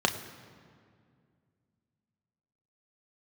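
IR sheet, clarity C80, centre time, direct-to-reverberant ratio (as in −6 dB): 12.0 dB, 19 ms, 4.0 dB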